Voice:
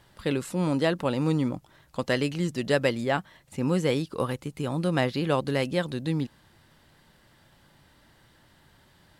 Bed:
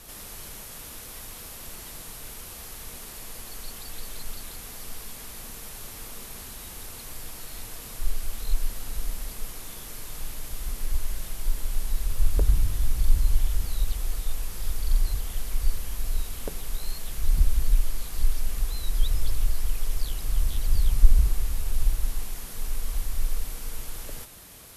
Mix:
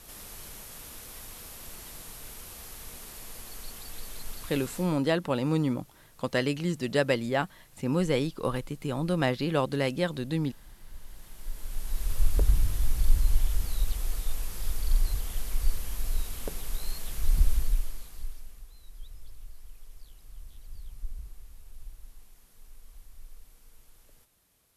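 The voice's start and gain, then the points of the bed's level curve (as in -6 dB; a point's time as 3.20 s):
4.25 s, -1.5 dB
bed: 4.78 s -3.5 dB
5.00 s -20 dB
10.86 s -20 dB
12.11 s -2 dB
17.53 s -2 dB
18.67 s -21.5 dB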